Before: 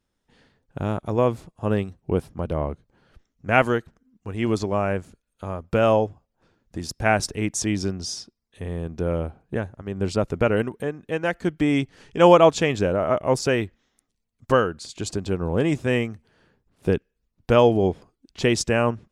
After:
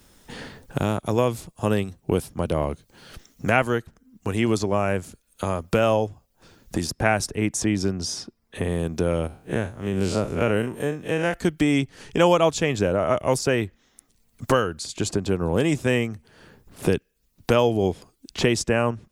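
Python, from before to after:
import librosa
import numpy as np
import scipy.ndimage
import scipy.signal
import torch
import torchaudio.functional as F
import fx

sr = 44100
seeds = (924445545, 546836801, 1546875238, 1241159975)

y = fx.spec_blur(x, sr, span_ms=85.0, at=(9.27, 11.34))
y = fx.high_shelf(y, sr, hz=6900.0, db=11.0)
y = fx.band_squash(y, sr, depth_pct=70)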